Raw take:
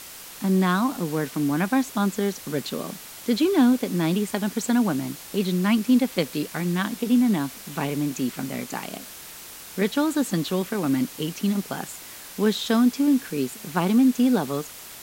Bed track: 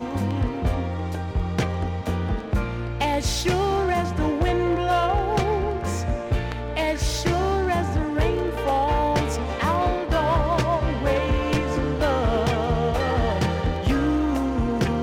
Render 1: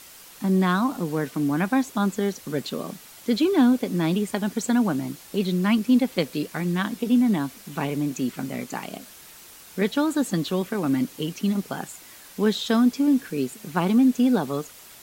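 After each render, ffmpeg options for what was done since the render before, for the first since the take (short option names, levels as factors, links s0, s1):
-af "afftdn=nr=6:nf=-41"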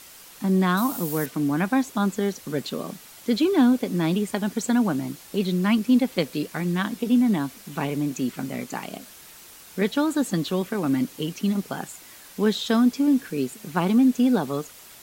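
-filter_complex "[0:a]asettb=1/sr,asplit=3[s0][s1][s2];[s0]atrim=end=0.774[s3];[s1]atrim=start=0.77:end=1.26,asetpts=PTS-STARTPTS,afade=t=in:d=0.004:c=qsin,afade=t=out:st=0.486:d=0.004:c=qsin,aemphasis=mode=production:type=50fm[s4];[s2]atrim=start=1.256[s5];[s3][s4]acrossfade=d=0.004:c1=hsin:c2=qsin[s6];[s6][s5]acrossfade=d=0.004:c1=qsin:c2=hsin"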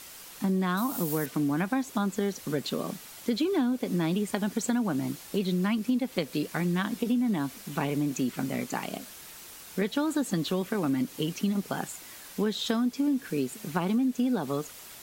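-af "acompressor=threshold=0.0631:ratio=6"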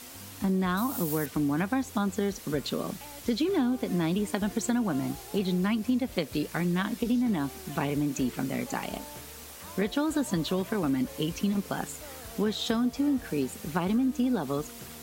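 -filter_complex "[1:a]volume=0.0596[s0];[0:a][s0]amix=inputs=2:normalize=0"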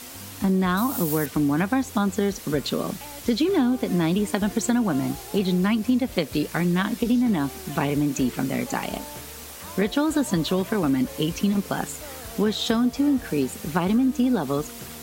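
-af "volume=1.88"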